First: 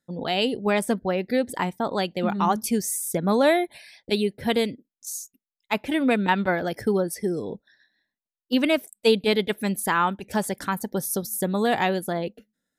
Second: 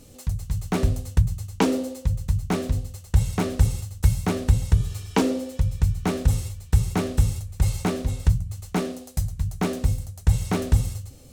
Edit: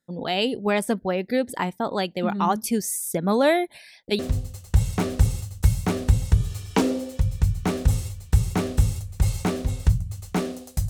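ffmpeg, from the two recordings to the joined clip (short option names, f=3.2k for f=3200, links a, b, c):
-filter_complex "[0:a]apad=whole_dur=10.89,atrim=end=10.89,atrim=end=4.192[a];[1:a]atrim=start=2.588:end=9.29[b];[a][b]acrossfade=d=0.004:c1=hsin:c2=hsin"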